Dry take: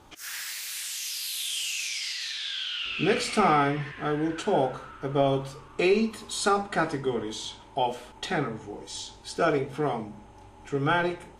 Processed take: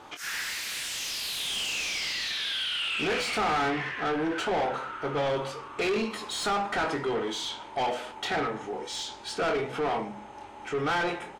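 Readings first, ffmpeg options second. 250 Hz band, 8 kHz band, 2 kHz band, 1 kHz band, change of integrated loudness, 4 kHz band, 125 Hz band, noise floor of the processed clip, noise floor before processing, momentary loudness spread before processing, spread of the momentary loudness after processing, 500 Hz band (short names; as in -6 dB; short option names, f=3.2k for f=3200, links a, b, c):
-4.5 dB, -2.5 dB, +1.5 dB, -1.5 dB, -1.5 dB, +1.5 dB, -7.5 dB, -44 dBFS, -50 dBFS, 13 LU, 7 LU, -3.0 dB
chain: -filter_complex "[0:a]asplit=2[a][b];[b]adelay=24,volume=-8dB[c];[a][c]amix=inputs=2:normalize=0,asplit=2[d][e];[e]highpass=f=720:p=1,volume=24dB,asoftclip=type=tanh:threshold=-9.5dB[f];[d][f]amix=inputs=2:normalize=0,lowpass=f=2.4k:p=1,volume=-6dB,asoftclip=type=tanh:threshold=-14.5dB,volume=-7.5dB"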